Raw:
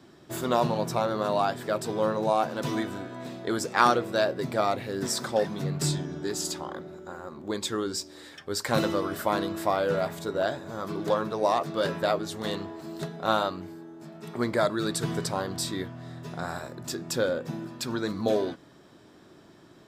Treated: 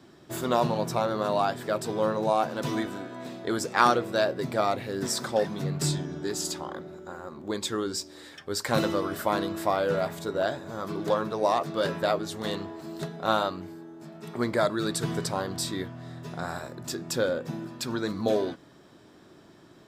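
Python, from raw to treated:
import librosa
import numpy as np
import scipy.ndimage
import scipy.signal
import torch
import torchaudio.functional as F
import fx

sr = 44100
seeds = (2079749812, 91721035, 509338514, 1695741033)

y = fx.highpass(x, sr, hz=140.0, slope=12, at=(2.86, 3.45))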